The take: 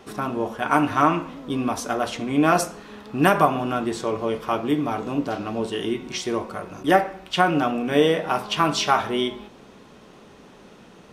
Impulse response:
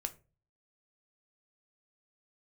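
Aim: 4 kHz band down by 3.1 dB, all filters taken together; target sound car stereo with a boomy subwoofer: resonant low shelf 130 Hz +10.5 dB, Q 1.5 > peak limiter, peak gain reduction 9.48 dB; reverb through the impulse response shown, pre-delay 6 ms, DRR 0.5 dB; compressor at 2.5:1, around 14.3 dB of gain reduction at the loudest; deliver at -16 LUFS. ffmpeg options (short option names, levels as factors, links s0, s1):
-filter_complex "[0:a]equalizer=f=4000:t=o:g=-4.5,acompressor=threshold=0.0178:ratio=2.5,asplit=2[s0][s1];[1:a]atrim=start_sample=2205,adelay=6[s2];[s1][s2]afir=irnorm=-1:irlink=0,volume=1[s3];[s0][s3]amix=inputs=2:normalize=0,lowshelf=f=130:t=q:w=1.5:g=10.5,volume=7.94,alimiter=limit=0.531:level=0:latency=1"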